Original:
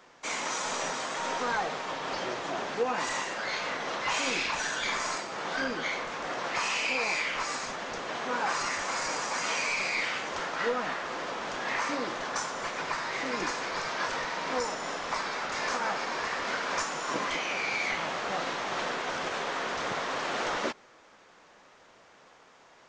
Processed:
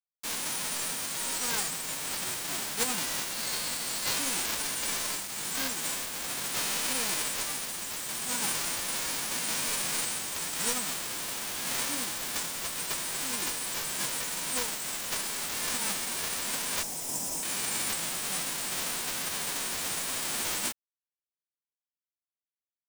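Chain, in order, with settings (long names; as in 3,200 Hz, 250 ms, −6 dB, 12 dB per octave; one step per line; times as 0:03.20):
spectral envelope flattened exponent 0.1
0:03.33–0:04.14: parametric band 4,400 Hz +7 dB 0.22 octaves
0:16.83–0:17.43: Chebyshev band-stop filter 970–5,100 Hz, order 5
bit reduction 6 bits
level −1 dB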